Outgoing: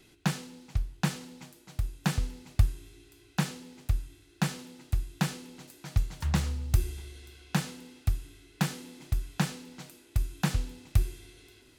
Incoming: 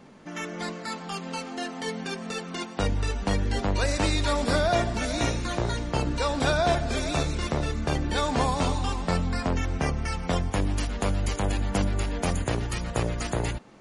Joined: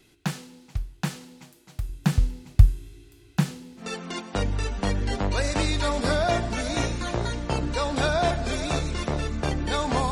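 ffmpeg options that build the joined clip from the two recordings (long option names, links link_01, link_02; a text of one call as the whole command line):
ffmpeg -i cue0.wav -i cue1.wav -filter_complex "[0:a]asettb=1/sr,asplit=3[link_01][link_02][link_03];[link_01]atrim=end=1.894[link_04];[link_02]atrim=start=1.89:end=3.88,asetpts=PTS-STARTPTS,afade=type=in:duration=0.004:curve=qsin,afade=type=out:start_time=1.986:duration=0.004:curve=qsin,lowshelf=frequency=250:gain=9.5[link_05];[link_03]atrim=start=3.876[link_06];[link_04][link_05]acrossfade=duration=0.004:curve1=hsin:curve2=qsin[link_07];[link_07][link_06]acrossfade=duration=0.004:curve1=qsin:curve2=hsin,apad=whole_dur=10.11,atrim=end=10.11,atrim=end=3.88,asetpts=PTS-STARTPTS[link_08];[1:a]atrim=start=2.2:end=8.55,asetpts=PTS-STARTPTS[link_09];[link_08][link_09]acrossfade=duration=0.12:curve1=tri:curve2=tri" out.wav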